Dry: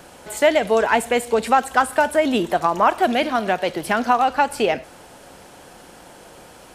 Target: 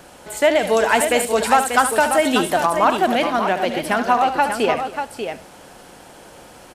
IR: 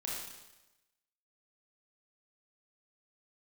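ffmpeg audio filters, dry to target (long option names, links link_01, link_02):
-filter_complex "[0:a]asettb=1/sr,asplit=3[link_01][link_02][link_03];[link_01]atrim=end=0.594[link_04];[link_02]atrim=start=0.59:end=2.66,asetpts=PTS-STARTPTS,afade=type=in:duration=0.004:curve=qsin,afade=type=out:start_time=2.066:duration=0.004:curve=qsin,highshelf=frequency=3300:gain=8.5[link_05];[link_03]atrim=start=2.656[link_06];[link_04][link_05]acrossfade=duration=0.004:curve1=hsin:curve2=qsin[link_07];[link_07][link_06]acrossfade=duration=0.004:curve1=qsin:curve2=hsin,aecho=1:1:73|249|589:0.316|0.126|0.422"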